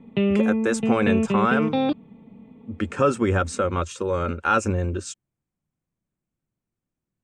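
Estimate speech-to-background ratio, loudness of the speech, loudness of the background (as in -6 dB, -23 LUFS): -1.0 dB, -24.5 LUFS, -23.5 LUFS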